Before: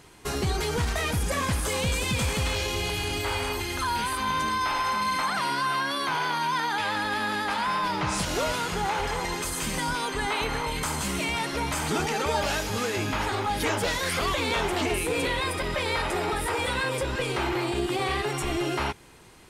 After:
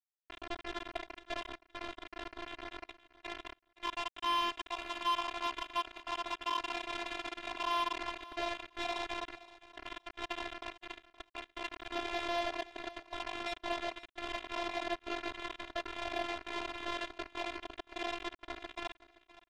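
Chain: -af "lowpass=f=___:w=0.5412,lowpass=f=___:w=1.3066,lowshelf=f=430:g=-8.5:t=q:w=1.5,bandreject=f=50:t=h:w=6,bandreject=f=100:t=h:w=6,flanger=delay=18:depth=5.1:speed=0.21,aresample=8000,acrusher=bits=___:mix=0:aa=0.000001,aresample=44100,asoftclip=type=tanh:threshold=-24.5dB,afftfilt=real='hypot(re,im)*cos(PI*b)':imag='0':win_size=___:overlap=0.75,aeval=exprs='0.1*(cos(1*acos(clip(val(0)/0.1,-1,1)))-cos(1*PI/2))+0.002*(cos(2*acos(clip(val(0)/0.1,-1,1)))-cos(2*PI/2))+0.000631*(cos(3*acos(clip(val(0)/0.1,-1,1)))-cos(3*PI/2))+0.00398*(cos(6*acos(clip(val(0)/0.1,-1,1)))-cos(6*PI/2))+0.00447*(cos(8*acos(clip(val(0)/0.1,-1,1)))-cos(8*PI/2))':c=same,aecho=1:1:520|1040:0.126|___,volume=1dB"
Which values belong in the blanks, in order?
1k, 1k, 4, 512, 0.0277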